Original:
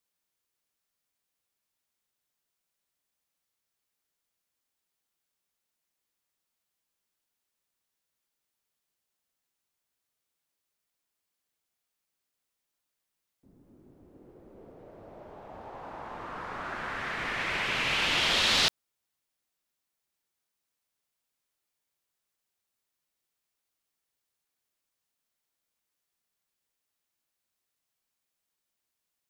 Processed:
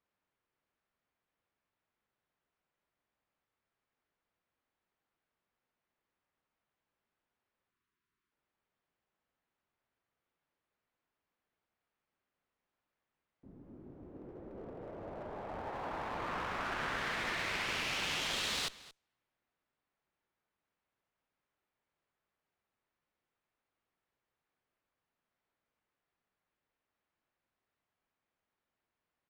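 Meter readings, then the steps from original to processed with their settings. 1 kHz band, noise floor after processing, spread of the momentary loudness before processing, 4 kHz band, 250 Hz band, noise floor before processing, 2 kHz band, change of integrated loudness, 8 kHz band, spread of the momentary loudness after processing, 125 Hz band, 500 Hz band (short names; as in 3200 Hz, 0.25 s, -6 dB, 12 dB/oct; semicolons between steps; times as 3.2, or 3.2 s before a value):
-4.0 dB, under -85 dBFS, 20 LU, -10.0 dB, -3.5 dB, -85 dBFS, -7.0 dB, -10.0 dB, -6.5 dB, 19 LU, -4.0 dB, -3.0 dB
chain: low-pass opened by the level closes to 1900 Hz, open at -30.5 dBFS; spectral delete 7.7–8.32, 450–940 Hz; compressor 8:1, threshold -35 dBFS, peak gain reduction 14 dB; one-sided clip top -47.5 dBFS; on a send: echo 0.227 s -19 dB; on the sum: gain +4.5 dB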